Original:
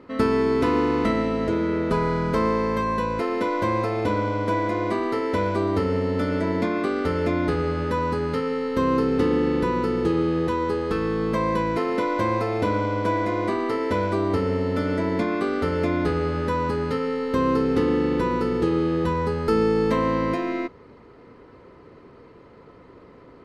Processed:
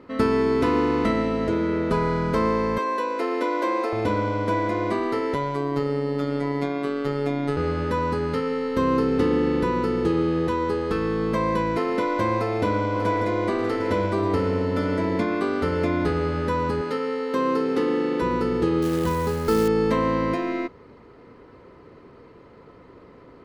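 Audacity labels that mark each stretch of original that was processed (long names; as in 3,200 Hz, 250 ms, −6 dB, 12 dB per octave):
2.780000	3.930000	Butterworth high-pass 250 Hz 72 dB per octave
5.340000	7.570000	phases set to zero 142 Hz
12.350000	13.470000	delay throw 590 ms, feedback 70%, level −9.5 dB
16.810000	18.220000	high-pass filter 260 Hz
18.820000	19.680000	floating-point word with a short mantissa of 2 bits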